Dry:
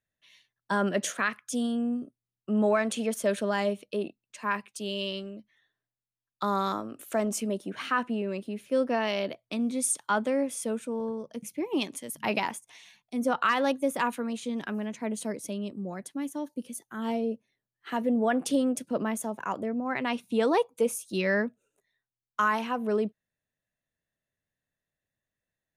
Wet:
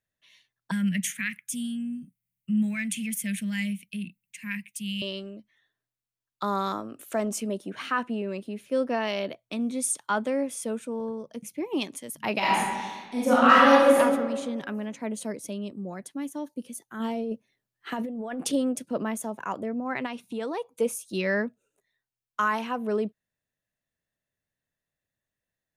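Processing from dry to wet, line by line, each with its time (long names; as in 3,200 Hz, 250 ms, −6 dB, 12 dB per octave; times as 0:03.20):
0:00.71–0:05.02: drawn EQ curve 110 Hz 0 dB, 180 Hz +10 dB, 390 Hz −27 dB, 640 Hz −27 dB, 1,200 Hz −23 dB, 2,100 Hz +8 dB, 4,300 Hz −6 dB, 13,000 Hz +11 dB
0:09.19–0:09.75: notch filter 4,800 Hz
0:12.38–0:13.98: thrown reverb, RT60 1.5 s, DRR −8.5 dB
0:17.00–0:18.53: compressor whose output falls as the input rises −31 dBFS
0:20.06–0:20.72: downward compressor 2 to 1, threshold −34 dBFS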